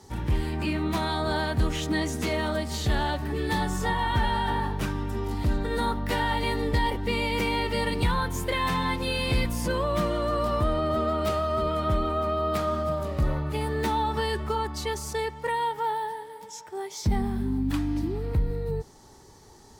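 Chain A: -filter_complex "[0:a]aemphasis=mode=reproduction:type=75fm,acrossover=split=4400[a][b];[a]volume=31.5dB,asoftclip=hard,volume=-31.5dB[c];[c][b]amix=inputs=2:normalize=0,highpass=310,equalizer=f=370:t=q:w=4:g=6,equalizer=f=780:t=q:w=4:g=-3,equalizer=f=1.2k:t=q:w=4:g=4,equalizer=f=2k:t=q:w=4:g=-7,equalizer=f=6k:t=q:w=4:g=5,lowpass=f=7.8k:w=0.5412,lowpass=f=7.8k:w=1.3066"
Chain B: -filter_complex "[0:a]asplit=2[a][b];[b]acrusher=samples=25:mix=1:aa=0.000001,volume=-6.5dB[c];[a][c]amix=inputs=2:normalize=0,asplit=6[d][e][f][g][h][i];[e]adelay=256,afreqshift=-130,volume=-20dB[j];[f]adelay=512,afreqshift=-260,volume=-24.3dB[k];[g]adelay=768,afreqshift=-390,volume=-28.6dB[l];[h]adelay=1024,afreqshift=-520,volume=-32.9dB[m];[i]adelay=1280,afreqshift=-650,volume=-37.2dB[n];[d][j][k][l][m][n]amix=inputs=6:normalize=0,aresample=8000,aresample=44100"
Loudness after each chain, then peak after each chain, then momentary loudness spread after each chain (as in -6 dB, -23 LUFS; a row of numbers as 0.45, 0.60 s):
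-35.0, -25.5 LUFS; -22.5, -11.5 dBFS; 6, 4 LU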